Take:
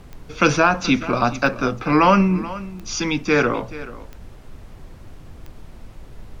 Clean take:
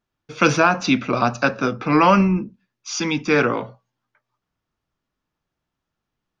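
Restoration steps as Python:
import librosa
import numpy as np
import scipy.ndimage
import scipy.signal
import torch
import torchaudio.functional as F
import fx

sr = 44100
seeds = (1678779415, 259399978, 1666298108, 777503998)

y = fx.fix_declick_ar(x, sr, threshold=10.0)
y = fx.noise_reduce(y, sr, print_start_s=4.29, print_end_s=4.79, reduce_db=30.0)
y = fx.fix_echo_inverse(y, sr, delay_ms=430, level_db=-16.5)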